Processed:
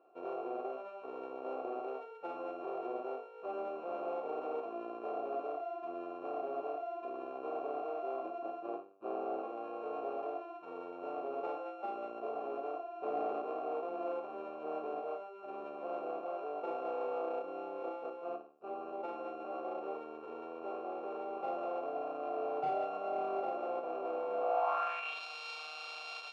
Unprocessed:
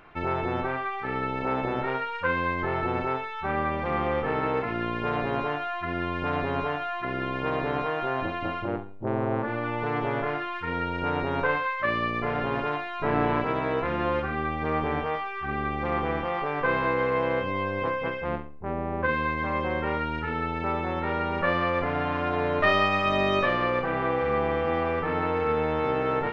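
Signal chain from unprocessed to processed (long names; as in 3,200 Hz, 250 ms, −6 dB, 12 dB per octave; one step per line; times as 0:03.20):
samples sorted by size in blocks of 32 samples
formant filter a
parametric band 70 Hz −13.5 dB 1.6 octaves
in parallel at −4.5 dB: sine wavefolder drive 13 dB, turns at −13.5 dBFS
on the sum: band-pass filter sweep 380 Hz → 4,500 Hz, 0:24.37–0:25.24
level −3 dB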